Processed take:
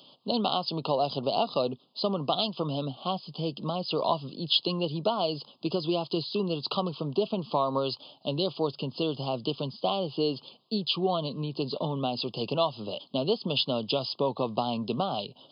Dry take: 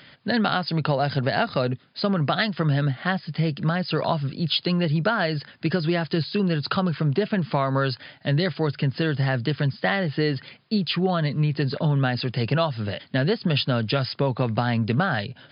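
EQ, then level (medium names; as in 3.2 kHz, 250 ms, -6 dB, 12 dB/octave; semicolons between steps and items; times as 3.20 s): dynamic bell 2.1 kHz, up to +7 dB, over -42 dBFS, Q 1.8; high-pass 280 Hz 12 dB/octave; elliptic band-stop 1.1–3 kHz, stop band 70 dB; -1.5 dB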